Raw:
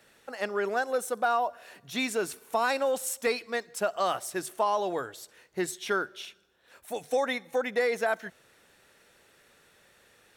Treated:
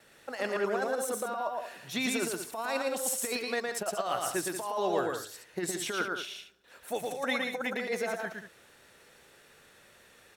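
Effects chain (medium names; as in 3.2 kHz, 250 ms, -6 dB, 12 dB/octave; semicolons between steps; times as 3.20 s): gate with hold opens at -57 dBFS; compressor with a negative ratio -29 dBFS, ratio -0.5; on a send: loudspeakers at several distances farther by 39 m -3 dB, 63 m -10 dB; on the sum: trim -2 dB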